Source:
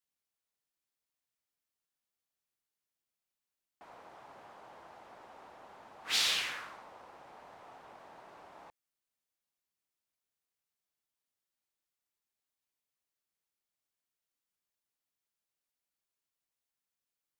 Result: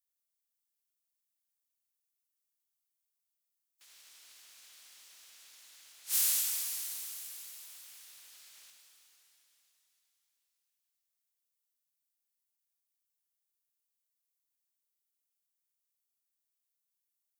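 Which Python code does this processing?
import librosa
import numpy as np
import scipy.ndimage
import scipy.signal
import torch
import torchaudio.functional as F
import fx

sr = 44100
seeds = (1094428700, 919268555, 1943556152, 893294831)

y = fx.spec_clip(x, sr, under_db=29)
y = librosa.effects.preemphasis(y, coef=0.97, zi=[0.0])
y = fx.rev_shimmer(y, sr, seeds[0], rt60_s=3.7, semitones=7, shimmer_db=-8, drr_db=1.5)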